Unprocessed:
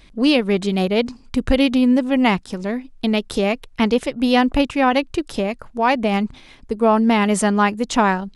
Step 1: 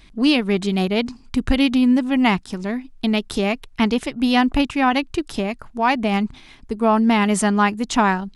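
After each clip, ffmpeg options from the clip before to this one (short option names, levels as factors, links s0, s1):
-af "equalizer=f=520:t=o:w=0.38:g=-9"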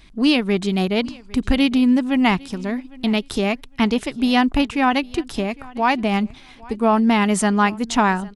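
-af "aecho=1:1:805|1610:0.0708|0.0142"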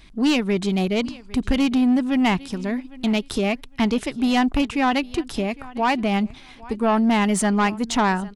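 -af "asoftclip=type=tanh:threshold=0.237"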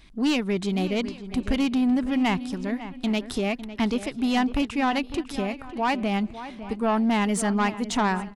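-filter_complex "[0:a]asplit=2[s0][s1];[s1]adelay=553,lowpass=f=2300:p=1,volume=0.237,asplit=2[s2][s3];[s3]adelay=553,lowpass=f=2300:p=1,volume=0.24,asplit=2[s4][s5];[s5]adelay=553,lowpass=f=2300:p=1,volume=0.24[s6];[s0][s2][s4][s6]amix=inputs=4:normalize=0,volume=0.631"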